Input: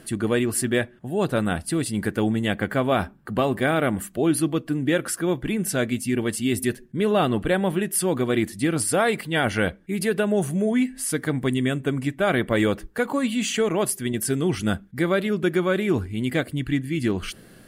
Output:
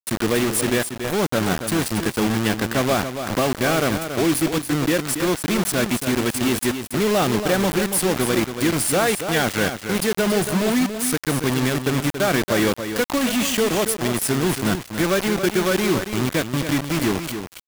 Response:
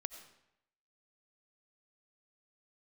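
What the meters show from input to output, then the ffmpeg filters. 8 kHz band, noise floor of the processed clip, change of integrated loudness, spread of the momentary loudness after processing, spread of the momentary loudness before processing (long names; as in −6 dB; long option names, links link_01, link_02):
+5.0 dB, −36 dBFS, +3.0 dB, 3 LU, 4 LU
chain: -filter_complex "[0:a]highpass=85,asplit=2[link_01][link_02];[link_02]acompressor=threshold=-34dB:ratio=5,volume=0.5dB[link_03];[link_01][link_03]amix=inputs=2:normalize=0,acrusher=bits=3:mix=0:aa=0.000001,volume=12.5dB,asoftclip=hard,volume=-12.5dB,aecho=1:1:280:0.376"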